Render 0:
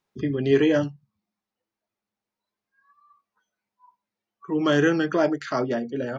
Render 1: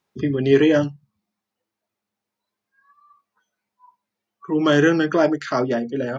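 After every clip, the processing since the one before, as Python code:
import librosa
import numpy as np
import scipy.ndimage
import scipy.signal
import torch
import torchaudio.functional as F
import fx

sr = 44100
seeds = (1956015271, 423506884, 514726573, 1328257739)

y = scipy.signal.sosfilt(scipy.signal.butter(2, 40.0, 'highpass', fs=sr, output='sos'), x)
y = y * 10.0 ** (4.0 / 20.0)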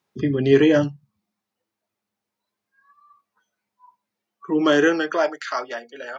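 y = fx.filter_sweep_highpass(x, sr, from_hz=70.0, to_hz=940.0, start_s=3.93, end_s=5.43, q=0.82)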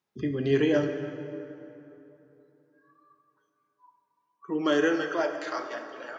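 y = fx.rev_plate(x, sr, seeds[0], rt60_s=3.2, hf_ratio=0.6, predelay_ms=0, drr_db=6.0)
y = y * 10.0 ** (-8.0 / 20.0)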